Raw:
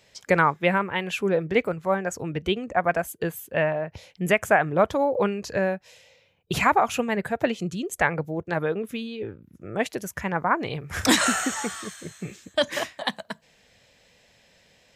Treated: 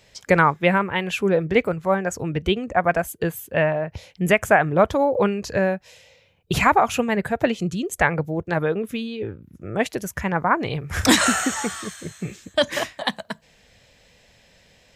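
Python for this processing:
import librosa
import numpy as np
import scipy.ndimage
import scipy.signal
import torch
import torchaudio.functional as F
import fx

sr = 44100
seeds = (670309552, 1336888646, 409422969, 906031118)

y = fx.low_shelf(x, sr, hz=84.0, db=10.0)
y = y * 10.0 ** (3.0 / 20.0)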